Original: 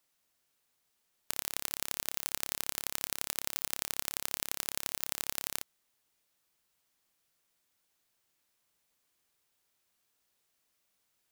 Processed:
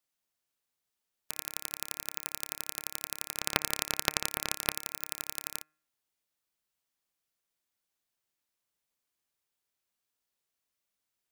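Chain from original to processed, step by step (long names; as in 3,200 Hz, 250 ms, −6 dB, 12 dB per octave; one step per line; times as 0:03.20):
0:03.35–0:04.74: each half-wave held at its own peak
hum removal 153.8 Hz, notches 17
expander for the loud parts 1.5 to 1, over −49 dBFS
level +3 dB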